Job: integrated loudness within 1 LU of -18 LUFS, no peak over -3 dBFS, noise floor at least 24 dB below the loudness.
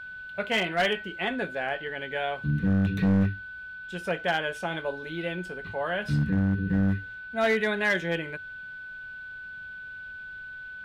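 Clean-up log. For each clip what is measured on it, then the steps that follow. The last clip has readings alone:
clipped 1.1%; flat tops at -18.0 dBFS; steady tone 1500 Hz; tone level -38 dBFS; loudness -28.0 LUFS; peak -18.0 dBFS; loudness target -18.0 LUFS
-> clip repair -18 dBFS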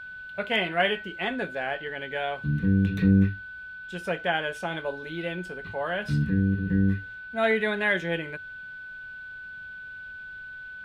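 clipped 0.0%; steady tone 1500 Hz; tone level -38 dBFS
-> notch 1500 Hz, Q 30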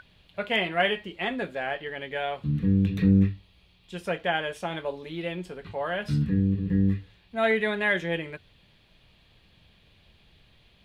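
steady tone none; loudness -27.0 LUFS; peak -10.0 dBFS; loudness target -18.0 LUFS
-> gain +9 dB; limiter -3 dBFS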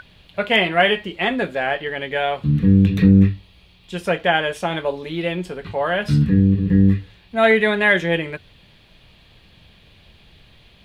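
loudness -18.5 LUFS; peak -3.0 dBFS; noise floor -52 dBFS

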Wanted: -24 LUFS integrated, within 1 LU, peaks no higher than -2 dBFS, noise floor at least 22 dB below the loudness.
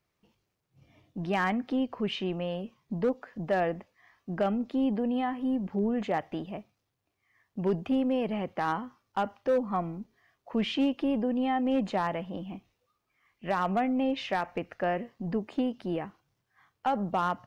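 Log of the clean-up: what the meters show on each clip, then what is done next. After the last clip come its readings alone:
clipped 0.4%; flat tops at -20.0 dBFS; loudness -30.5 LUFS; peak -20.0 dBFS; loudness target -24.0 LUFS
-> clip repair -20 dBFS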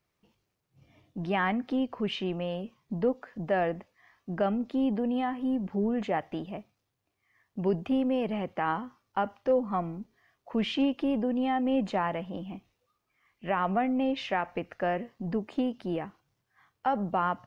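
clipped 0.0%; loudness -30.5 LUFS; peak -15.5 dBFS; loudness target -24.0 LUFS
-> gain +6.5 dB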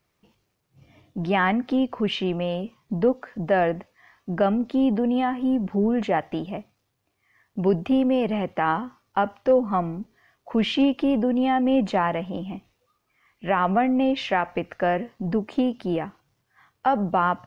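loudness -24.0 LUFS; peak -9.0 dBFS; noise floor -74 dBFS

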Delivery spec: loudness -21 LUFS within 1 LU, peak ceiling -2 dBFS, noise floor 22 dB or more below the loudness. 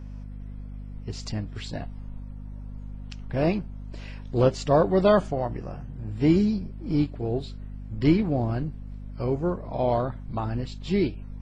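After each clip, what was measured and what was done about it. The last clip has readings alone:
hum 50 Hz; harmonics up to 250 Hz; hum level -35 dBFS; loudness -26.0 LUFS; peak -8.0 dBFS; loudness target -21.0 LUFS
-> de-hum 50 Hz, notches 5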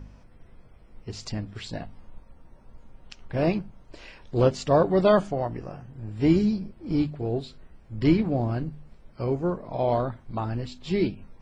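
hum none; loudness -26.0 LUFS; peak -9.0 dBFS; loudness target -21.0 LUFS
-> gain +5 dB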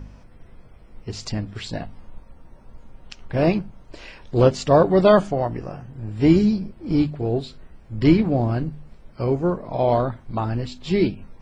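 loudness -21.0 LUFS; peak -4.0 dBFS; noise floor -48 dBFS

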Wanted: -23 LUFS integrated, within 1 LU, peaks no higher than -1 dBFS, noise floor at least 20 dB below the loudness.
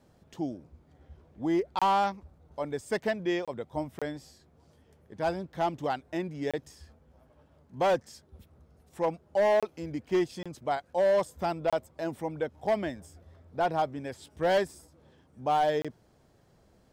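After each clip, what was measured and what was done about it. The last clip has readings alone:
clipped 1.2%; flat tops at -20.0 dBFS; dropouts 8; longest dropout 26 ms; loudness -30.5 LUFS; peak -20.0 dBFS; loudness target -23.0 LUFS
-> clip repair -20 dBFS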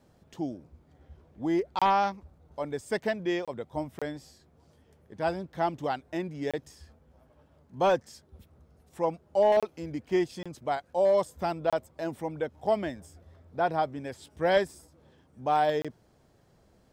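clipped 0.0%; dropouts 8; longest dropout 26 ms
-> interpolate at 1.79/3.45/3.99/6.51/9.6/10.43/11.7/15.82, 26 ms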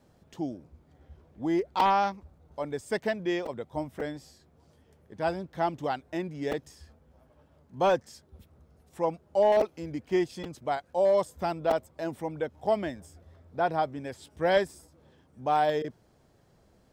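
dropouts 0; loudness -29.5 LUFS; peak -11.0 dBFS; loudness target -23.0 LUFS
-> gain +6.5 dB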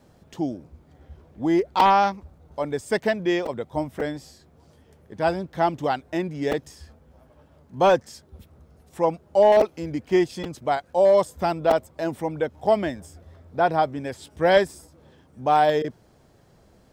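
loudness -23.0 LUFS; peak -4.5 dBFS; noise floor -57 dBFS

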